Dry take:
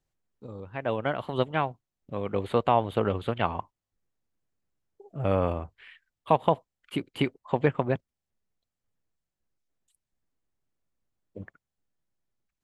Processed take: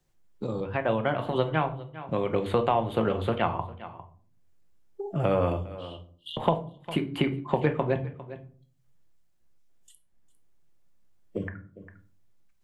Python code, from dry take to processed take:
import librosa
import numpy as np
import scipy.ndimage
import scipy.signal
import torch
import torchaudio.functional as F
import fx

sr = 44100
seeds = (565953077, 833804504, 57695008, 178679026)

y = fx.noise_reduce_blind(x, sr, reduce_db=14)
y = fx.brickwall_highpass(y, sr, low_hz=2800.0, at=(5.56, 6.37))
y = y + 10.0 ** (-22.5 / 20.0) * np.pad(y, (int(402 * sr / 1000.0), 0))[:len(y)]
y = fx.room_shoebox(y, sr, seeds[0], volume_m3=230.0, walls='furnished', distance_m=0.88)
y = fx.band_squash(y, sr, depth_pct=70)